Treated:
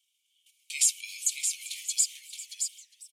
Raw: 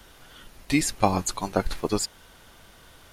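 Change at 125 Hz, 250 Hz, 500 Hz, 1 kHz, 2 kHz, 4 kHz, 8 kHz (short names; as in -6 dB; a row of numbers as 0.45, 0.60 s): under -40 dB, under -40 dB, under -40 dB, under -40 dB, -6.5 dB, 0.0 dB, +6.5 dB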